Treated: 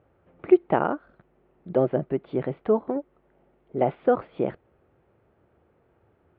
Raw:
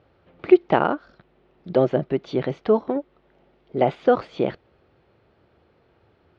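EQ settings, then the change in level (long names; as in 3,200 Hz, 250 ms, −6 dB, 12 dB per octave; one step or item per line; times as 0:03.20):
Gaussian smoothing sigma 3.4 samples
−3.0 dB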